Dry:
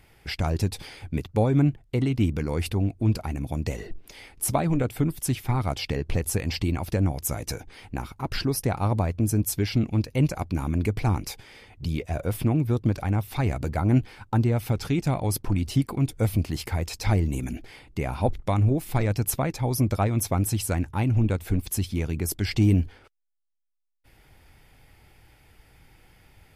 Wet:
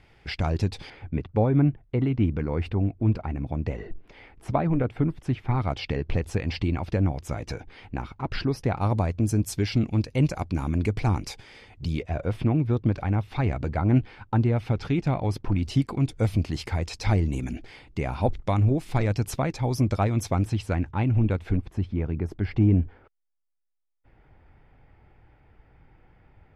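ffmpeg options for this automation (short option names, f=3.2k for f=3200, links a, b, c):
-af "asetnsamples=n=441:p=0,asendcmd='0.9 lowpass f 2100;5.51 lowpass f 3600;8.81 lowpass f 7200;12.03 lowpass f 3500;15.63 lowpass f 6200;20.45 lowpass f 3300;21.57 lowpass f 1500',lowpass=4.8k"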